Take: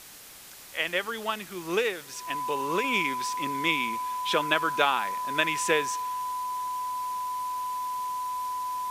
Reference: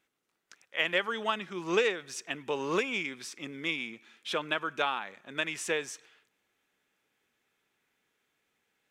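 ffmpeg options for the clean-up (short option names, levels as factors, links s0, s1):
-af "bandreject=f=1000:w=30,afwtdn=0.005,asetnsamples=n=441:p=0,asendcmd='2.84 volume volume -6dB',volume=1"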